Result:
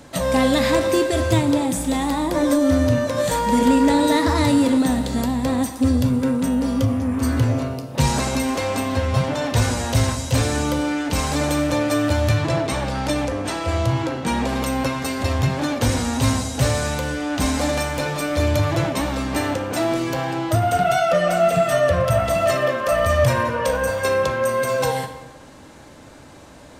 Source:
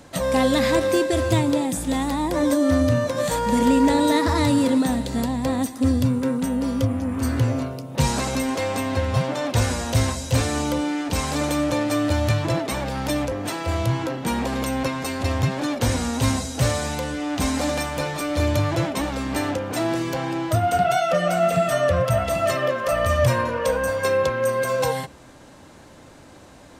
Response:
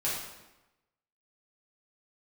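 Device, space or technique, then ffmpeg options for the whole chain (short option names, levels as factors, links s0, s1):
saturated reverb return: -filter_complex "[0:a]asplit=2[s0][s1];[1:a]atrim=start_sample=2205[s2];[s1][s2]afir=irnorm=-1:irlink=0,asoftclip=type=tanh:threshold=0.282,volume=0.299[s3];[s0][s3]amix=inputs=2:normalize=0,asettb=1/sr,asplit=3[s4][s5][s6];[s4]atrim=end=12.384[s7];[s5]atrim=start=12.38:end=14.49,asetpts=PTS-STARTPTS,afade=t=in:d=0.004:c=qsin,afade=t=out:st=2.106:d=0.004:c=qsin,lowpass=10000[s8];[s6]atrim=start=14.486[s9];[s7][s8]acrossfade=d=0.004:c1=hsin:c2=qsin[s10];[s10][s9]acrossfade=d=0.004:c1=qsin:c2=hsin"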